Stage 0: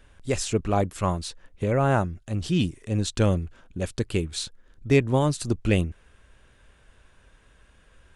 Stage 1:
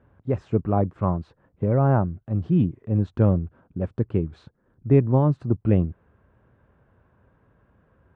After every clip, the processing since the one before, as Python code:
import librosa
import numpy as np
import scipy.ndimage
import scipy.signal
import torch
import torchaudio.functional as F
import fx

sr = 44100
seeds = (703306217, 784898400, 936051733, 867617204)

y = scipy.signal.sosfilt(scipy.signal.cheby1(2, 1.0, [110.0, 1100.0], 'bandpass', fs=sr, output='sos'), x)
y = fx.low_shelf(y, sr, hz=350.0, db=7.5)
y = F.gain(torch.from_numpy(y), -1.5).numpy()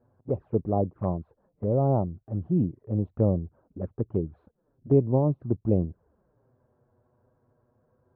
y = scipy.signal.sosfilt(scipy.signal.bessel(2, 860.0, 'lowpass', norm='mag', fs=sr, output='sos'), x)
y = fx.peak_eq(y, sr, hz=610.0, db=7.5, octaves=2.1)
y = fx.env_flanger(y, sr, rest_ms=8.5, full_db=-16.5)
y = F.gain(torch.from_numpy(y), -6.0).numpy()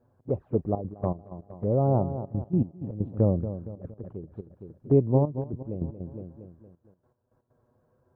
y = fx.echo_feedback(x, sr, ms=232, feedback_pct=48, wet_db=-11)
y = fx.step_gate(y, sr, bpm=160, pattern='xxxxxxxx.x.x..x.', floor_db=-12.0, edge_ms=4.5)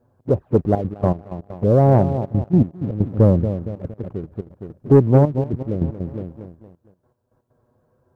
y = fx.leveller(x, sr, passes=1)
y = F.gain(torch.from_numpy(y), 6.5).numpy()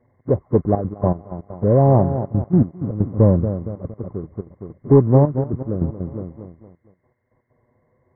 y = fx.freq_compress(x, sr, knee_hz=1000.0, ratio=4.0)